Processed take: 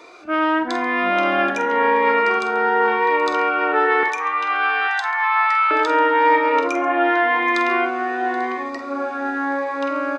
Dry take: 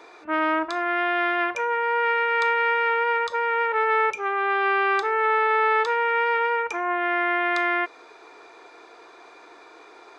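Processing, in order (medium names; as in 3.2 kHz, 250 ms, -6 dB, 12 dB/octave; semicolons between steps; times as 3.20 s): ever faster or slower copies 296 ms, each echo -4 st, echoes 2, each echo -6 dB; 2.39–2.88 s: peaking EQ 2.9 kHz -8 dB 1.2 oct; 4.03–5.71 s: steep high-pass 810 Hz 48 dB/octave; multi-tap echo 47/137/778/842 ms -10.5/-19.5/-18/-19.5 dB; on a send at -16 dB: reverberation RT60 0.65 s, pre-delay 5 ms; on the sum: Shepard-style phaser rising 0.91 Hz; trim +5.5 dB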